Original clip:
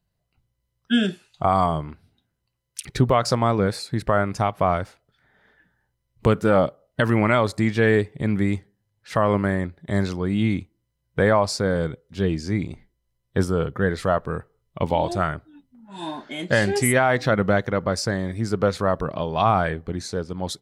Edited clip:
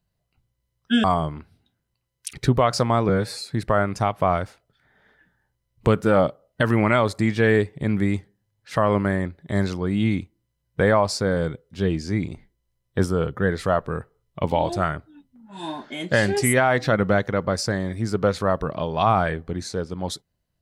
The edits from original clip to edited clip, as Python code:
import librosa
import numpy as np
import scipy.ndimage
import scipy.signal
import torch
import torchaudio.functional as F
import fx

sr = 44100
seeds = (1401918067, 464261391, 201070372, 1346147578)

y = fx.edit(x, sr, fx.cut(start_s=1.04, length_s=0.52),
    fx.stretch_span(start_s=3.61, length_s=0.26, factor=1.5), tone=tone)